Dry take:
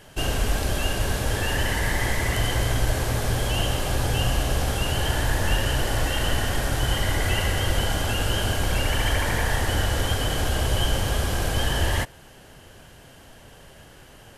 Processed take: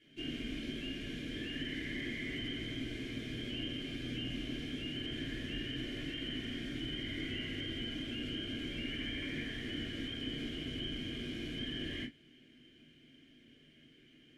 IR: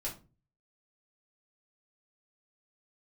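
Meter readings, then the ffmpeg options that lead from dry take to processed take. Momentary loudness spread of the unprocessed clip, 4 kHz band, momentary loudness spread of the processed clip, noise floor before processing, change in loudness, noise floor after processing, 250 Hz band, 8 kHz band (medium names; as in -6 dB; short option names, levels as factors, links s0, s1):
2 LU, -11.5 dB, 2 LU, -48 dBFS, -15.0 dB, -63 dBFS, -6.5 dB, -29.5 dB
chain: -filter_complex "[0:a]asplit=3[s0][s1][s2];[s0]bandpass=f=270:t=q:w=8,volume=1[s3];[s1]bandpass=f=2290:t=q:w=8,volume=0.501[s4];[s2]bandpass=f=3010:t=q:w=8,volume=0.355[s5];[s3][s4][s5]amix=inputs=3:normalize=0[s6];[1:a]atrim=start_sample=2205,atrim=end_sample=3528,asetrate=52920,aresample=44100[s7];[s6][s7]afir=irnorm=-1:irlink=0,acrossover=split=2500[s8][s9];[s9]acompressor=threshold=0.00447:ratio=4:attack=1:release=60[s10];[s8][s10]amix=inputs=2:normalize=0,volume=1.19"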